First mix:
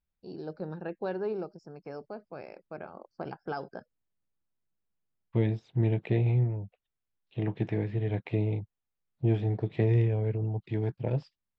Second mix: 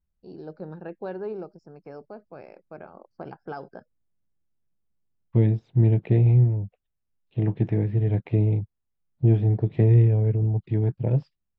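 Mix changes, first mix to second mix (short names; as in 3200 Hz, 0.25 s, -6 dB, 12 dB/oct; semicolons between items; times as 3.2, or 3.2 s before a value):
second voice: add low shelf 320 Hz +9.5 dB; master: add high shelf 2900 Hz -7.5 dB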